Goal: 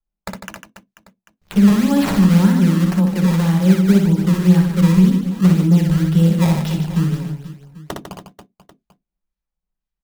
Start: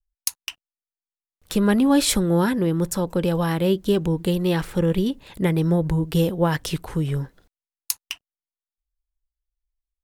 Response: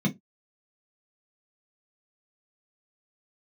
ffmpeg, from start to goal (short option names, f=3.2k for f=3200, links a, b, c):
-filter_complex "[0:a]acrusher=samples=17:mix=1:aa=0.000001:lfo=1:lforange=27.2:lforate=1.9,aecho=1:1:60|150|285|487.5|791.2:0.631|0.398|0.251|0.158|0.1,asplit=2[a][b];[1:a]atrim=start_sample=2205[c];[b][c]afir=irnorm=-1:irlink=0,volume=-17.5dB[d];[a][d]amix=inputs=2:normalize=0,volume=-2.5dB"